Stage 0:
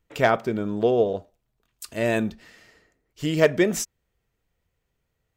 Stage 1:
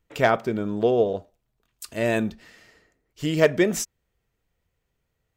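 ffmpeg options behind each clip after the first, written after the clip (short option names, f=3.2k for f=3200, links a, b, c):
-af anull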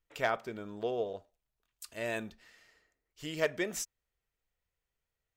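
-af "equalizer=f=170:w=0.39:g=-9.5,volume=-8.5dB"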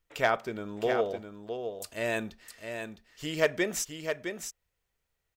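-af "aecho=1:1:661:0.447,volume=5dB"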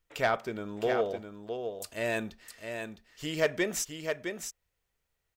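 -af "asoftclip=type=tanh:threshold=-15.5dB"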